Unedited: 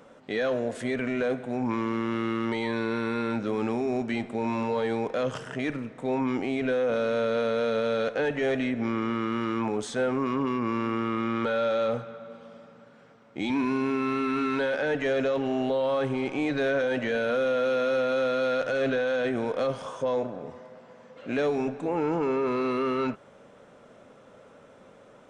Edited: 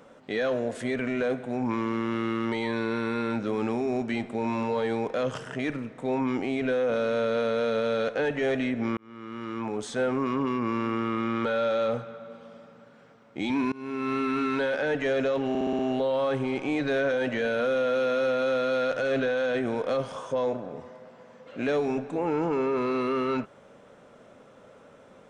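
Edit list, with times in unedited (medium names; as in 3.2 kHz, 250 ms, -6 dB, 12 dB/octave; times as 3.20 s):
8.97–10.02 s: fade in
13.72–14.14 s: fade in, from -24 dB
15.49 s: stutter 0.06 s, 6 plays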